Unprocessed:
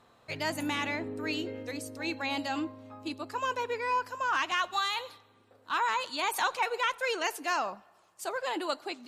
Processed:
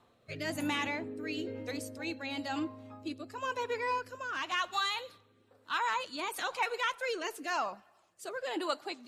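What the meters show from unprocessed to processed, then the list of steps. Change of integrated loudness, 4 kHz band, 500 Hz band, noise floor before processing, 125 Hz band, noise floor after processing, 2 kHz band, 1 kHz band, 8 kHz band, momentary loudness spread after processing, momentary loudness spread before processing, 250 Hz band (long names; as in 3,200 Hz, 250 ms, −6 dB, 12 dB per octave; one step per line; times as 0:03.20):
−3.5 dB, −3.0 dB, −2.5 dB, −63 dBFS, −2.0 dB, −67 dBFS, −3.5 dB, −4.5 dB, −4.5 dB, 10 LU, 10 LU, −1.5 dB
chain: spectral magnitudes quantised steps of 15 dB
rotating-speaker cabinet horn 1 Hz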